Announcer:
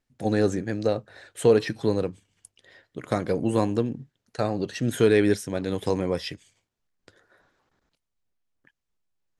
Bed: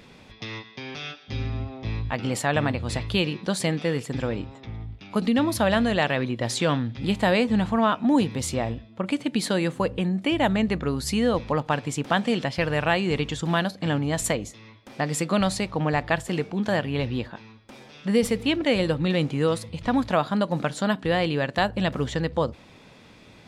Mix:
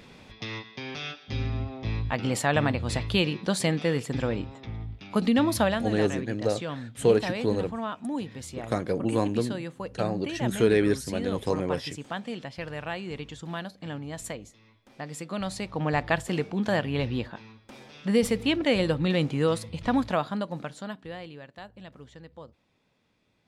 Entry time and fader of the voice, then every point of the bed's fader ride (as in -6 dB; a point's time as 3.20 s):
5.60 s, -2.5 dB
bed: 5.62 s -0.5 dB
5.87 s -11.5 dB
15.26 s -11.5 dB
15.98 s -1.5 dB
19.96 s -1.5 dB
21.53 s -21 dB